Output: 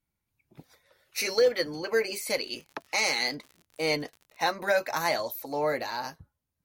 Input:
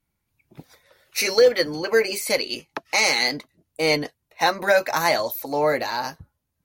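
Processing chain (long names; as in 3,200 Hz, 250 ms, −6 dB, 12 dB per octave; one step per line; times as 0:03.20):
0:02.26–0:04.51: surface crackle 73 per second −33 dBFS
level −7 dB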